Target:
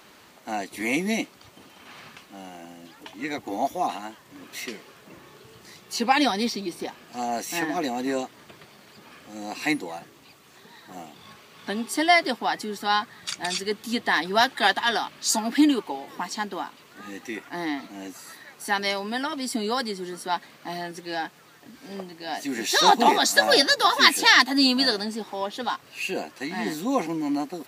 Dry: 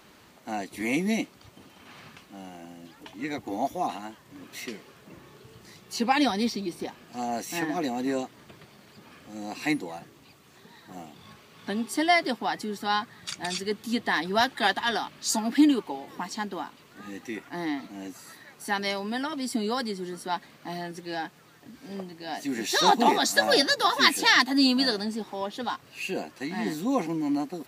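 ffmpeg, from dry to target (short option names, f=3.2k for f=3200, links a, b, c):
-af "lowshelf=f=250:g=-8,volume=4dB"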